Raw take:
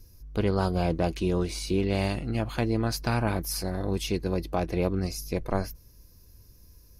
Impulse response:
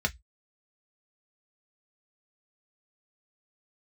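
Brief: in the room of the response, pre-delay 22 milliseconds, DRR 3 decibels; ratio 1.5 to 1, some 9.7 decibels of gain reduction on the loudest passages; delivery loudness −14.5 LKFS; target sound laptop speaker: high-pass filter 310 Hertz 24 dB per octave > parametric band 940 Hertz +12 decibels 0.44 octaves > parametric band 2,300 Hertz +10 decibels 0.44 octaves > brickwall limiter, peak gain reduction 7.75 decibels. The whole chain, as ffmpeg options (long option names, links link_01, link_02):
-filter_complex "[0:a]acompressor=threshold=-49dB:ratio=1.5,asplit=2[link_01][link_02];[1:a]atrim=start_sample=2205,adelay=22[link_03];[link_02][link_03]afir=irnorm=-1:irlink=0,volume=-11dB[link_04];[link_01][link_04]amix=inputs=2:normalize=0,highpass=frequency=310:width=0.5412,highpass=frequency=310:width=1.3066,equalizer=frequency=940:width_type=o:width=0.44:gain=12,equalizer=frequency=2300:width_type=o:width=0.44:gain=10,volume=24dB,alimiter=limit=-2dB:level=0:latency=1"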